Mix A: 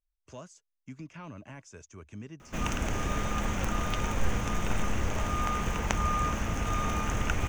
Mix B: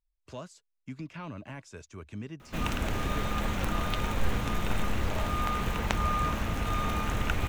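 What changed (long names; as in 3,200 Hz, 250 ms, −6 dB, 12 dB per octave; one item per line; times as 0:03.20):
speech +3.5 dB
master: add thirty-one-band graphic EQ 4,000 Hz +8 dB, 6,300 Hz −9 dB, 12,500 Hz +8 dB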